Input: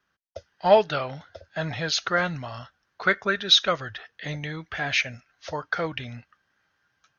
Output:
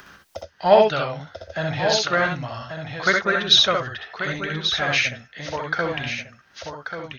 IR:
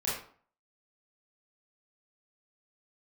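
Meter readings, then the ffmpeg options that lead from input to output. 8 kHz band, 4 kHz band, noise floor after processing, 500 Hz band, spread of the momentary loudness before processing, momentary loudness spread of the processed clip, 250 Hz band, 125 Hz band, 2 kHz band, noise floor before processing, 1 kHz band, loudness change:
n/a, +4.5 dB, -57 dBFS, +4.5 dB, 19 LU, 20 LU, +4.0 dB, +4.0 dB, +4.5 dB, -75 dBFS, +4.5 dB, +4.0 dB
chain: -filter_complex "[0:a]asplit=2[a][b];[b]aecho=0:1:1137:0.355[c];[a][c]amix=inputs=2:normalize=0,acompressor=mode=upward:threshold=-31dB:ratio=2.5,asplit=2[d][e];[e]aecho=0:1:64|78:0.631|0.335[f];[d][f]amix=inputs=2:normalize=0,volume=2dB"

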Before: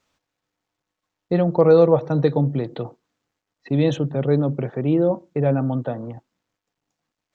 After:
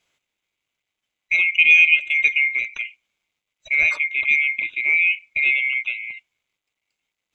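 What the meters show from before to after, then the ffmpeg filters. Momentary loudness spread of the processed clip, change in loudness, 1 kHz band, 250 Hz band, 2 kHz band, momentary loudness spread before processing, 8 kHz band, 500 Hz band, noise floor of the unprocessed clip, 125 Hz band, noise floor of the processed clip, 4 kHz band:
15 LU, +3.5 dB, under -15 dB, under -30 dB, +26.0 dB, 15 LU, n/a, under -30 dB, -84 dBFS, under -35 dB, -84 dBFS, +12.0 dB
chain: -af "afftfilt=real='real(if(lt(b,920),b+92*(1-2*mod(floor(b/92),2)),b),0)':imag='imag(if(lt(b,920),b+92*(1-2*mod(floor(b/92),2)),b),0)':win_size=2048:overlap=0.75"

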